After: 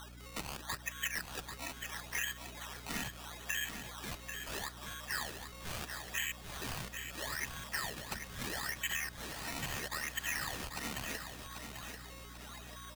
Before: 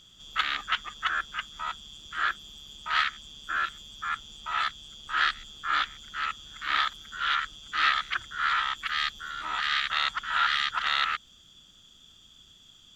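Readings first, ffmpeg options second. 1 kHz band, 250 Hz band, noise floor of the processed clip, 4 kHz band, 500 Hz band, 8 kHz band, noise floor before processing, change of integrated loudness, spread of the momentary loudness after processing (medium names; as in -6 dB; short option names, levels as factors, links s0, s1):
-16.5 dB, +8.0 dB, -51 dBFS, -12.0 dB, +5.0 dB, +7.5 dB, -56 dBFS, -11.0 dB, 9 LU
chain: -filter_complex "[0:a]asuperstop=centerf=1300:order=12:qfactor=2.2,aeval=exprs='val(0)+0.00631*sin(2*PI*3800*n/s)':c=same,flanger=delay=2.5:depth=2.2:regen=88:speed=1.2:shape=triangular,aecho=1:1:4.3:0.41,acompressor=threshold=0.0141:ratio=6,asplit=3[s0][s1][s2];[s0]bandpass=f=530:t=q:w=8,volume=1[s3];[s1]bandpass=f=1840:t=q:w=8,volume=0.501[s4];[s2]bandpass=f=2480:t=q:w=8,volume=0.355[s5];[s3][s4][s5]amix=inputs=3:normalize=0,acrusher=samples=18:mix=1:aa=0.000001:lfo=1:lforange=18:lforate=0.76,acrossover=split=280[s6][s7];[s7]acompressor=threshold=0.00158:ratio=5[s8];[s6][s8]amix=inputs=2:normalize=0,tiltshelf=f=830:g=-9,asplit=2[s9][s10];[s10]aecho=0:1:790|1580|2370|3160|3950:0.422|0.186|0.0816|0.0359|0.0158[s11];[s9][s11]amix=inputs=2:normalize=0,aeval=exprs='val(0)+0.000447*(sin(2*PI*60*n/s)+sin(2*PI*2*60*n/s)/2+sin(2*PI*3*60*n/s)/3+sin(2*PI*4*60*n/s)/4+sin(2*PI*5*60*n/s)/5)':c=same,volume=5.62"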